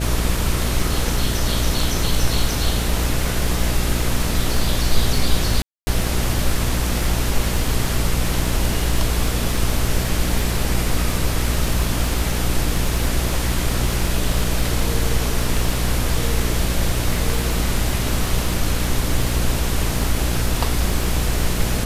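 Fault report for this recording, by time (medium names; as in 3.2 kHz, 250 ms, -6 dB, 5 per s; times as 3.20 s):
buzz 60 Hz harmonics 11 -23 dBFS
crackle 44 per s -25 dBFS
5.62–5.87 s: dropout 250 ms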